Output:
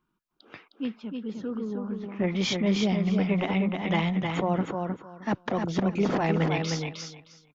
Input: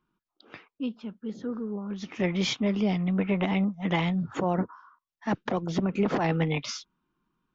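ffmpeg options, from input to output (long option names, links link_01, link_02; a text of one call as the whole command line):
ffmpeg -i in.wav -filter_complex "[0:a]asplit=3[link_01][link_02][link_03];[link_01]afade=type=out:start_time=1.74:duration=0.02[link_04];[link_02]lowpass=1700,afade=type=in:start_time=1.74:duration=0.02,afade=type=out:start_time=2.26:duration=0.02[link_05];[link_03]afade=type=in:start_time=2.26:duration=0.02[link_06];[link_04][link_05][link_06]amix=inputs=3:normalize=0,asplit=2[link_07][link_08];[link_08]aecho=0:1:310|620|930:0.596|0.107|0.0193[link_09];[link_07][link_09]amix=inputs=2:normalize=0" out.wav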